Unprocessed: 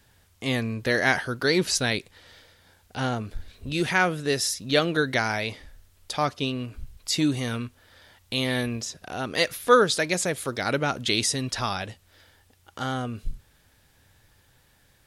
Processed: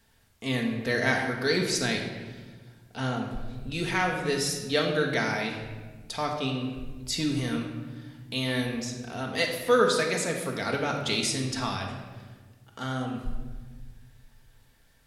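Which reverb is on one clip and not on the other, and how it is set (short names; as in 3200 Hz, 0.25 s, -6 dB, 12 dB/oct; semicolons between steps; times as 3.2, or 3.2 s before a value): shoebox room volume 1200 m³, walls mixed, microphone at 1.6 m; gain -5.5 dB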